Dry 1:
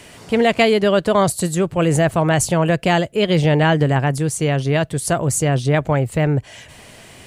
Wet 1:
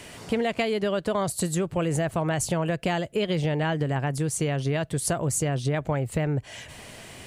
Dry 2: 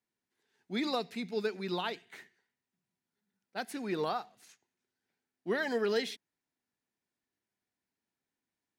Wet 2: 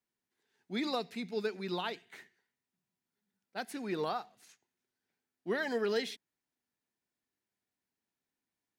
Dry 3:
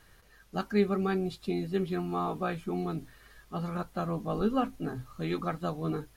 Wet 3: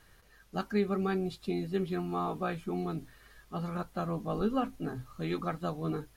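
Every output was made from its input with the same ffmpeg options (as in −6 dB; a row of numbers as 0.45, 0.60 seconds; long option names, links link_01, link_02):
-af "acompressor=threshold=-21dB:ratio=6,volume=-1.5dB"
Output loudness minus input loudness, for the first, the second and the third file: −9.0, −1.5, −2.0 LU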